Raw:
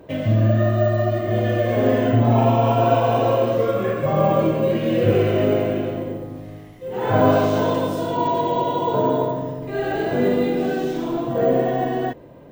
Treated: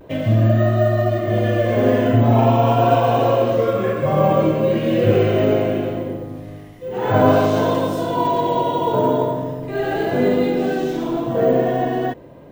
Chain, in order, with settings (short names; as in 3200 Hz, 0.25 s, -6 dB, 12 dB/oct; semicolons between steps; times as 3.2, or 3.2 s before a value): vibrato 0.41 Hz 25 cents; gain +2 dB